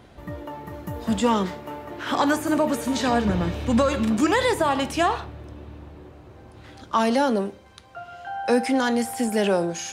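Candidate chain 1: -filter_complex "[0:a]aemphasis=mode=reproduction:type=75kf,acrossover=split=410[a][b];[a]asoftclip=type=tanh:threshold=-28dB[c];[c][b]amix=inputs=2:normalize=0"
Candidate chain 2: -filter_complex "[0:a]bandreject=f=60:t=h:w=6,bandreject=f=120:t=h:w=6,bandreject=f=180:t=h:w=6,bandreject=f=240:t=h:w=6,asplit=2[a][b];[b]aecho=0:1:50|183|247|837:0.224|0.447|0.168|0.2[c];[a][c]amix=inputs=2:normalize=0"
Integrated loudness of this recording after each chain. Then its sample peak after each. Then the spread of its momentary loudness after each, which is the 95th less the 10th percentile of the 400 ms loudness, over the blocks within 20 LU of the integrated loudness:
-26.0, -22.5 LUFS; -10.5, -8.0 dBFS; 18, 15 LU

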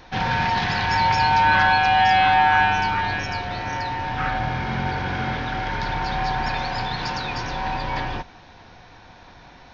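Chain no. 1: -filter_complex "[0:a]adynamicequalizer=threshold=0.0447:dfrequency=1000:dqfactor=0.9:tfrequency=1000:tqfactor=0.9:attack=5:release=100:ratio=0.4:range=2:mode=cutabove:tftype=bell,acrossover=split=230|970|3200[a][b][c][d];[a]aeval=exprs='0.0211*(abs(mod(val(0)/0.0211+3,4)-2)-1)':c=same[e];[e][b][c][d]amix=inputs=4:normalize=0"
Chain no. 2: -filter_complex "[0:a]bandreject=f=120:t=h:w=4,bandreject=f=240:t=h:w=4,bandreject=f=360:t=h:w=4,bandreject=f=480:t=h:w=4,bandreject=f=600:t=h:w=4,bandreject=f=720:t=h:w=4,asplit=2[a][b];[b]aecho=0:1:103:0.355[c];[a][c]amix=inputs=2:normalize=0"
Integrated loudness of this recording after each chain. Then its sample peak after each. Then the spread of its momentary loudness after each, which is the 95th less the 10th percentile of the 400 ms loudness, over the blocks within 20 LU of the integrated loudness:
-23.5, -20.5 LUFS; -8.5, -5.5 dBFS; 9, 13 LU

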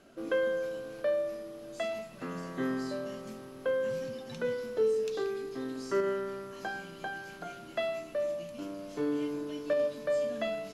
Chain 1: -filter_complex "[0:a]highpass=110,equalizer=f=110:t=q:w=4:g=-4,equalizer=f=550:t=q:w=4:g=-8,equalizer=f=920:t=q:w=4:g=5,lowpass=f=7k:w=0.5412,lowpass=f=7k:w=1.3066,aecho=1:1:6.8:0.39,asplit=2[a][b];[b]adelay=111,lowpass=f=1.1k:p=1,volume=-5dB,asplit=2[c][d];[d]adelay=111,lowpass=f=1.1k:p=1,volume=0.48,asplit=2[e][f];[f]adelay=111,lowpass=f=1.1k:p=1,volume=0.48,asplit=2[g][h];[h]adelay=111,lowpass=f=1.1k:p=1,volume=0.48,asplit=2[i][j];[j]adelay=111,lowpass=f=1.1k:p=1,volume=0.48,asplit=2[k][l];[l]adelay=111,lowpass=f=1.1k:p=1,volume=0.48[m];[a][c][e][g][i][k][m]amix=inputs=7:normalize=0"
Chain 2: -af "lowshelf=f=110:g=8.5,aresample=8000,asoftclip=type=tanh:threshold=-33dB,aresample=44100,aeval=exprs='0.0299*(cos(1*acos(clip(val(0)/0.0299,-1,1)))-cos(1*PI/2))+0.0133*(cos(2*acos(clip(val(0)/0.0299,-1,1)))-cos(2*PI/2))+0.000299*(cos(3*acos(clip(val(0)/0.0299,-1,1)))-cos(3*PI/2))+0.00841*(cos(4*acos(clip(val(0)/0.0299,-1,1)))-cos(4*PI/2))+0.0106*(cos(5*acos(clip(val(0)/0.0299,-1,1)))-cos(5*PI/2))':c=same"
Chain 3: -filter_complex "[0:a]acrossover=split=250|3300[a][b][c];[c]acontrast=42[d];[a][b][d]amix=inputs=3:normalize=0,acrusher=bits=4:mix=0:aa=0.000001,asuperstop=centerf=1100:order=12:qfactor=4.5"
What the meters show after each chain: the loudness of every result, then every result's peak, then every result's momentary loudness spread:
-34.5, -36.5, -31.5 LUFS; -18.0, -27.0, -15.5 dBFS; 11, 2, 15 LU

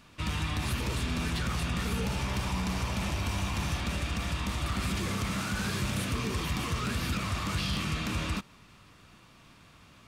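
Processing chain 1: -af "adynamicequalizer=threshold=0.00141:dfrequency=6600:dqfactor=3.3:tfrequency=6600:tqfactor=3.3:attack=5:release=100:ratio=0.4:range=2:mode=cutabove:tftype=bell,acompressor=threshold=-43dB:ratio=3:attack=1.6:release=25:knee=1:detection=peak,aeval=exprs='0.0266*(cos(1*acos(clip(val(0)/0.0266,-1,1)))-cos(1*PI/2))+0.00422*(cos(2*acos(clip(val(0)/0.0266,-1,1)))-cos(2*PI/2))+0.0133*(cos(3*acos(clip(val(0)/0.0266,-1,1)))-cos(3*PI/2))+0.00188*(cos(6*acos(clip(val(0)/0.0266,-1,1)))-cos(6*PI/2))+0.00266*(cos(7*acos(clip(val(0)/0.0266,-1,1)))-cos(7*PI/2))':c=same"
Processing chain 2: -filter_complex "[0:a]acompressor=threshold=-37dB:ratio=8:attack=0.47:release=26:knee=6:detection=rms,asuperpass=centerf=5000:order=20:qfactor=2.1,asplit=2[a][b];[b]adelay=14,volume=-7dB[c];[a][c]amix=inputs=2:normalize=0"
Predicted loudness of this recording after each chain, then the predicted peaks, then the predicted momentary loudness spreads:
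-46.5, -52.0 LUFS; -30.0, -38.0 dBFS; 9, 15 LU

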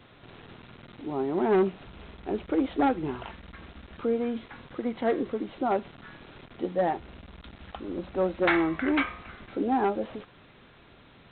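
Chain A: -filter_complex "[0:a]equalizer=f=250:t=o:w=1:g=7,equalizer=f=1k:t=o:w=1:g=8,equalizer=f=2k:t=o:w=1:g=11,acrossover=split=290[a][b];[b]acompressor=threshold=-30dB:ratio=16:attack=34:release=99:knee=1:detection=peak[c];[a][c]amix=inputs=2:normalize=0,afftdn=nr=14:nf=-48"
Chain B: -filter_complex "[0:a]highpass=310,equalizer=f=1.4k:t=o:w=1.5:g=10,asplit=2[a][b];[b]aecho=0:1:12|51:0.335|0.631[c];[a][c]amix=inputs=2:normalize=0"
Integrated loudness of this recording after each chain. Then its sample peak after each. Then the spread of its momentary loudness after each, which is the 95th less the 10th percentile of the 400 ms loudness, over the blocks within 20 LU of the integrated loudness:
-28.0, -25.0 LUFS; -7.5, -4.0 dBFS; 18, 22 LU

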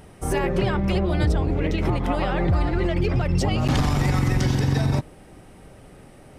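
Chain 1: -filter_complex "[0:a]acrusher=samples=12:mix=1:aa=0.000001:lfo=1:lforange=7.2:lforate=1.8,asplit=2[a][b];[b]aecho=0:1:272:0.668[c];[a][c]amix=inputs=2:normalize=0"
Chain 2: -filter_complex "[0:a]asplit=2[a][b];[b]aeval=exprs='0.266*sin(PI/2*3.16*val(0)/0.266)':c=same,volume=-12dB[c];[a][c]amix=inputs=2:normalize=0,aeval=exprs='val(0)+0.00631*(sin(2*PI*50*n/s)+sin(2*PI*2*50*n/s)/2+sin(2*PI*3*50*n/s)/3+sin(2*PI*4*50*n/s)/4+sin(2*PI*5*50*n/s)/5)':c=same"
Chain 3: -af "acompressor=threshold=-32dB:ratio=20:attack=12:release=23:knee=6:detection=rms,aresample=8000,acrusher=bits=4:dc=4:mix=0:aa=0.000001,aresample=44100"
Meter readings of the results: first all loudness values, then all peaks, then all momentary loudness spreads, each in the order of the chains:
-21.5, -20.0, -39.0 LUFS; -7.5, -14.0, -21.5 dBFS; 5, 5, 11 LU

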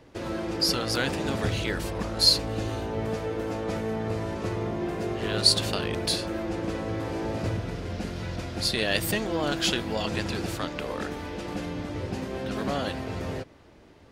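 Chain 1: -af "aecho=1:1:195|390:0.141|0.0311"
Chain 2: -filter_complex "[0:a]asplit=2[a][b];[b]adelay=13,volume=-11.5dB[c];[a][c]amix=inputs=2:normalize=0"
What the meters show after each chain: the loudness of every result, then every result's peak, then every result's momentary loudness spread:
-28.0, -28.0 LUFS; -6.0, -5.5 dBFS; 12, 13 LU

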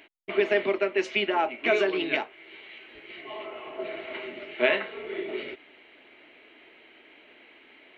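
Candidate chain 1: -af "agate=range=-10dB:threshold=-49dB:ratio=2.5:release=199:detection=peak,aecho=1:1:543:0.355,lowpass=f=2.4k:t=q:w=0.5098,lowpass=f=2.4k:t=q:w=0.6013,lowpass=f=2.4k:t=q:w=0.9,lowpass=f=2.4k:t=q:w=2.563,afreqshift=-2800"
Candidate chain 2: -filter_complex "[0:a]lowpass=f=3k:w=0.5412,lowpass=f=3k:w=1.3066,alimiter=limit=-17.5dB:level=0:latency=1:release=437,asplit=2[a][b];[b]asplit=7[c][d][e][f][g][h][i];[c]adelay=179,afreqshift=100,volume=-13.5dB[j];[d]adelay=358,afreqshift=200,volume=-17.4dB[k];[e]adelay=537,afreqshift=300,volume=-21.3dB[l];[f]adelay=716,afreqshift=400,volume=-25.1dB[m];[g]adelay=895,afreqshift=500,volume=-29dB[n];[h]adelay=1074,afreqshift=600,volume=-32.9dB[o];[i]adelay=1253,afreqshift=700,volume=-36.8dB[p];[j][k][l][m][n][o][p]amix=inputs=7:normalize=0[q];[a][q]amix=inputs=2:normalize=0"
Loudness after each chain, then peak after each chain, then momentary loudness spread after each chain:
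-26.0, -32.5 LUFS; -9.5, -16.5 dBFS; 17, 22 LU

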